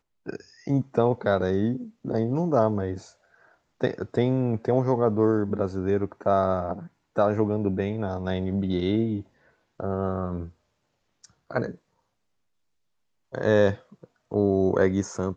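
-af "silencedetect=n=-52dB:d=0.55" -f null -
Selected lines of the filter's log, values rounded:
silence_start: 10.52
silence_end: 11.24 | silence_duration: 0.72
silence_start: 11.77
silence_end: 13.32 | silence_duration: 1.55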